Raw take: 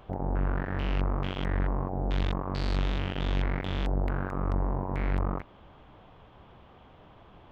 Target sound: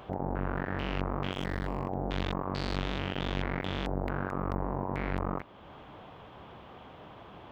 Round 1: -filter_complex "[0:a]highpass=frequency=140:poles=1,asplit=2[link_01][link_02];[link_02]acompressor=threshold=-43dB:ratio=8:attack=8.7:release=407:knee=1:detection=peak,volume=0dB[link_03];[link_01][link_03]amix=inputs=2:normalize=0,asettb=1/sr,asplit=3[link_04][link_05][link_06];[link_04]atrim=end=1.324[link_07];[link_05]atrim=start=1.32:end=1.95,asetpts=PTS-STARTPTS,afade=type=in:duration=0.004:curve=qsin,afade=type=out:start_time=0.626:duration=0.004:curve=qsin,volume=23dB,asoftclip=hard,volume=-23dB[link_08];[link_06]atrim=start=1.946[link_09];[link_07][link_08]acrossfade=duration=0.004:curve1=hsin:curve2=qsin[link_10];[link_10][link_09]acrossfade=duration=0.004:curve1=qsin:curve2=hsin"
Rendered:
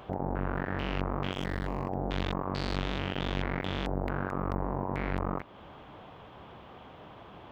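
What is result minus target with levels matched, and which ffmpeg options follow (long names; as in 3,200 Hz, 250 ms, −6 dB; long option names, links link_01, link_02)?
downward compressor: peak gain reduction −5.5 dB
-filter_complex "[0:a]highpass=frequency=140:poles=1,asplit=2[link_01][link_02];[link_02]acompressor=threshold=-49dB:ratio=8:attack=8.7:release=407:knee=1:detection=peak,volume=0dB[link_03];[link_01][link_03]amix=inputs=2:normalize=0,asettb=1/sr,asplit=3[link_04][link_05][link_06];[link_04]atrim=end=1.324[link_07];[link_05]atrim=start=1.32:end=1.95,asetpts=PTS-STARTPTS,afade=type=in:duration=0.004:curve=qsin,afade=type=out:start_time=0.626:duration=0.004:curve=qsin,volume=23dB,asoftclip=hard,volume=-23dB[link_08];[link_06]atrim=start=1.946[link_09];[link_07][link_08]acrossfade=duration=0.004:curve1=hsin:curve2=qsin[link_10];[link_10][link_09]acrossfade=duration=0.004:curve1=qsin:curve2=hsin"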